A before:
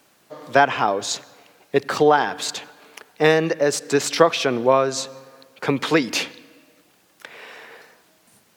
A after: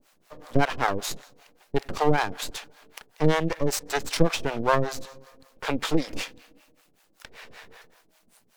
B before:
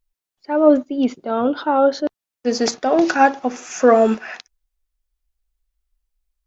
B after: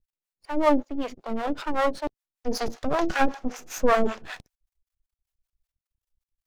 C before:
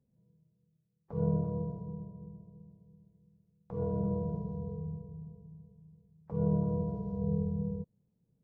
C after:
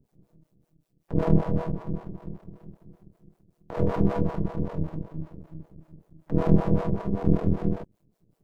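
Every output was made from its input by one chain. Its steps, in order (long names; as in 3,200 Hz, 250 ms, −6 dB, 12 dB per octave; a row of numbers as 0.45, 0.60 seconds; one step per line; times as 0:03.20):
half-wave rectification
two-band tremolo in antiphase 5.2 Hz, depth 100%, crossover 510 Hz
loudness normalisation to −27 LKFS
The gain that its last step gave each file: +2.5, +1.0, +17.0 decibels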